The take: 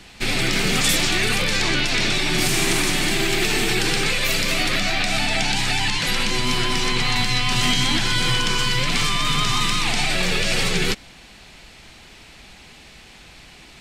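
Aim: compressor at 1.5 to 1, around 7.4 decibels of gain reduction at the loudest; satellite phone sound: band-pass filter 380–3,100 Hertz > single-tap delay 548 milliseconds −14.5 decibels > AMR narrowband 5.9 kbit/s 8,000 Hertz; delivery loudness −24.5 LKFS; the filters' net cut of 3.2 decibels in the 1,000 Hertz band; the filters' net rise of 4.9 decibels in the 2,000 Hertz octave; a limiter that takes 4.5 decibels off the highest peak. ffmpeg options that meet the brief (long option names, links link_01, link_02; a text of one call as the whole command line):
ffmpeg -i in.wav -af "equalizer=frequency=1000:width_type=o:gain=-6.5,equalizer=frequency=2000:width_type=o:gain=8.5,acompressor=threshold=-35dB:ratio=1.5,alimiter=limit=-16.5dB:level=0:latency=1,highpass=380,lowpass=3100,aecho=1:1:548:0.188,volume=7.5dB" -ar 8000 -c:a libopencore_amrnb -b:a 5900 out.amr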